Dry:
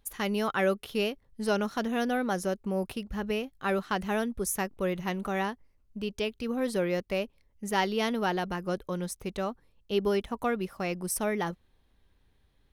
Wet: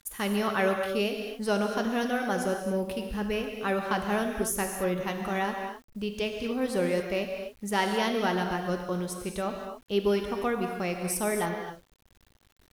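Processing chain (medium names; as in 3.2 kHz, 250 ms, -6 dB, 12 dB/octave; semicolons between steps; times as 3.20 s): gated-style reverb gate 300 ms flat, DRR 3 dB; word length cut 10-bit, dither none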